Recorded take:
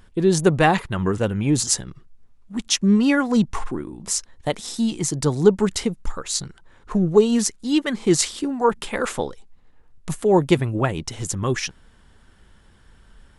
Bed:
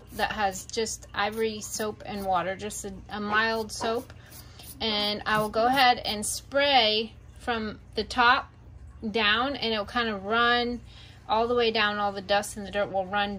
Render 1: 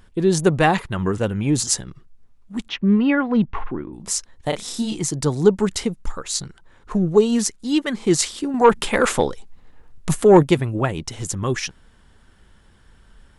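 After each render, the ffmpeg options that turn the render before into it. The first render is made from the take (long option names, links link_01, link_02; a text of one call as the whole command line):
ffmpeg -i in.wav -filter_complex "[0:a]asplit=3[link_01][link_02][link_03];[link_01]afade=type=out:start_time=2.67:duration=0.02[link_04];[link_02]lowpass=frequency=3000:width=0.5412,lowpass=frequency=3000:width=1.3066,afade=type=in:start_time=2.67:duration=0.02,afade=type=out:start_time=3.92:duration=0.02[link_05];[link_03]afade=type=in:start_time=3.92:duration=0.02[link_06];[link_04][link_05][link_06]amix=inputs=3:normalize=0,asettb=1/sr,asplit=3[link_07][link_08][link_09];[link_07]atrim=end=4.494[link_10];[link_08]atrim=start=4.49:end=4.99,asetpts=PTS-STARTPTS,afade=type=in:duration=0.004:curve=qsin,afade=type=out:start_time=0.496:duration=0.004:curve=qsin,asplit=2[link_11][link_12];[link_12]adelay=33,volume=-4dB[link_13];[link_11][link_13]amix=inputs=2:normalize=0,atrim=end_sample=22050[link_14];[link_09]atrim=start=4.986[link_15];[link_10][link_14]acrossfade=duration=0.004:curve1=hsin:curve2=qsin[link_16];[link_16][link_15]acrossfade=duration=0.004:curve1=qsin:curve2=hsin,asettb=1/sr,asplit=3[link_17][link_18][link_19];[link_17]atrim=end=8.544[link_20];[link_18]atrim=start=8.54:end=10.43,asetpts=PTS-STARTPTS,afade=type=in:duration=0.004:curve=qsin,afade=type=out:start_time=1.886:duration=0.004:curve=qsin,acontrast=76[link_21];[link_19]atrim=start=10.426[link_22];[link_20][link_21]acrossfade=duration=0.004:curve1=hsin:curve2=qsin[link_23];[link_23][link_22]acrossfade=duration=0.004:curve1=qsin:curve2=hsin" out.wav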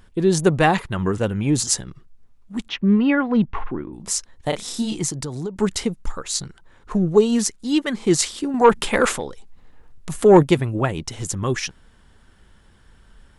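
ffmpeg -i in.wav -filter_complex "[0:a]asettb=1/sr,asplit=3[link_01][link_02][link_03];[link_01]atrim=end=5.114[link_04];[link_02]atrim=start=5.11:end=5.56,asetpts=PTS-STARTPTS,afade=type=in:duration=0.004:curve=qsin,afade=type=out:start_time=0.446:duration=0.004:curve=qsin,acompressor=threshold=-25dB:ratio=6:attack=3.2:release=140:knee=1:detection=peak[link_05];[link_03]atrim=start=5.556[link_06];[link_04][link_05]acrossfade=duration=0.004:curve1=hsin:curve2=qsin[link_07];[link_07][link_06]acrossfade=duration=0.004:curve1=qsin:curve2=hsin,asettb=1/sr,asplit=3[link_08][link_09][link_10];[link_08]atrim=end=9.164[link_11];[link_09]atrim=start=9.16:end=10.15,asetpts=PTS-STARTPTS,afade=type=in:duration=0.004:curve=qsin,afade=type=out:start_time=0.986:duration=0.004:curve=qsin,acompressor=threshold=-40dB:ratio=1.5:attack=3.2:release=140:knee=1:detection=peak[link_12];[link_10]atrim=start=10.146[link_13];[link_11][link_12]acrossfade=duration=0.004:curve1=hsin:curve2=qsin[link_14];[link_14][link_13]acrossfade=duration=0.004:curve1=qsin:curve2=hsin" out.wav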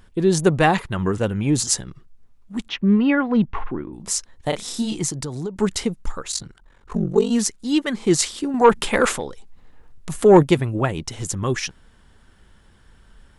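ffmpeg -i in.wav -filter_complex "[0:a]asplit=3[link_01][link_02][link_03];[link_01]afade=type=out:start_time=6.31:duration=0.02[link_04];[link_02]aeval=exprs='val(0)*sin(2*PI*23*n/s)':channel_layout=same,afade=type=in:start_time=6.31:duration=0.02,afade=type=out:start_time=7.29:duration=0.02[link_05];[link_03]afade=type=in:start_time=7.29:duration=0.02[link_06];[link_04][link_05][link_06]amix=inputs=3:normalize=0" out.wav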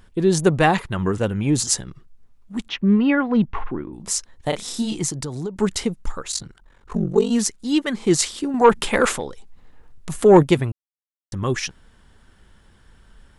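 ffmpeg -i in.wav -filter_complex "[0:a]asplit=3[link_01][link_02][link_03];[link_01]atrim=end=10.72,asetpts=PTS-STARTPTS,afade=type=out:start_time=10.716:duration=0.004:curve=hsin[link_04];[link_02]atrim=start=10.72:end=11.32,asetpts=PTS-STARTPTS,volume=0[link_05];[link_03]atrim=start=11.32,asetpts=PTS-STARTPTS,afade=type=in:duration=0.004:curve=hsin[link_06];[link_04][link_05][link_06]concat=n=3:v=0:a=1" out.wav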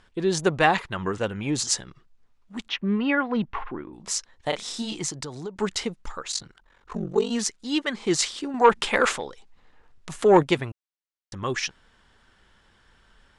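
ffmpeg -i in.wav -af "lowpass=6300,lowshelf=frequency=380:gain=-11" out.wav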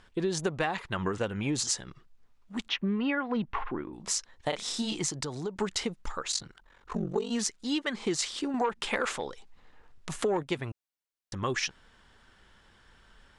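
ffmpeg -i in.wav -af "acompressor=threshold=-26dB:ratio=8" out.wav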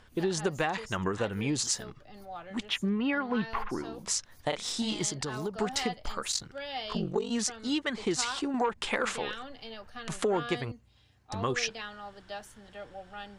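ffmpeg -i in.wav -i bed.wav -filter_complex "[1:a]volume=-16.5dB[link_01];[0:a][link_01]amix=inputs=2:normalize=0" out.wav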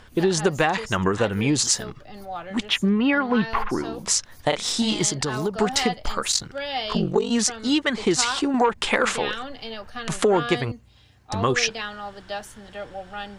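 ffmpeg -i in.wav -af "volume=9dB" out.wav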